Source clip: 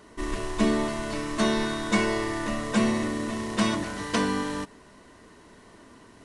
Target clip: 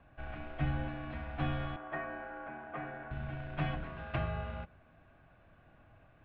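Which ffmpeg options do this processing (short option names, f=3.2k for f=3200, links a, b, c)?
-filter_complex "[0:a]highpass=f=180:t=q:w=0.5412,highpass=f=180:t=q:w=1.307,lowpass=f=3.2k:t=q:w=0.5176,lowpass=f=3.2k:t=q:w=0.7071,lowpass=f=3.2k:t=q:w=1.932,afreqshift=-360,asettb=1/sr,asplit=3[a][b][c];[a]atrim=end=1.764[d];[b]atrim=start=1.76:end=3.11,asetpts=PTS-STARTPTS,afade=t=in:d=0.004:c=qsin,afade=t=out:st=1.346:d=0.004:c=qsin,acrossover=split=280 2100:gain=0.0794 1 0.1[e][f][g];[e][f][g]amix=inputs=3:normalize=0[h];[c]atrim=start=3.106[i];[d][h]acrossfade=d=0.004:c1=hsin:c2=qsin[j];[j][i]acrossfade=d=0.004:c1=qsin:c2=hsin,volume=-9dB"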